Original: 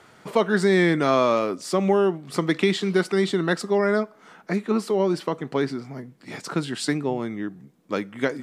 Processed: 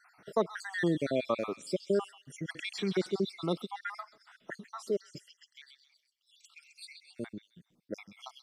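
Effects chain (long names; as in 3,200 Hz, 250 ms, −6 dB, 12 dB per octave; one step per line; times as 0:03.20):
time-frequency cells dropped at random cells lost 67%
0:05.18–0:07.16: four-pole ladder high-pass 2,200 Hz, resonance 50%
echo through a band-pass that steps 131 ms, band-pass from 3,600 Hz, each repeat 0.7 octaves, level −5 dB
level −7 dB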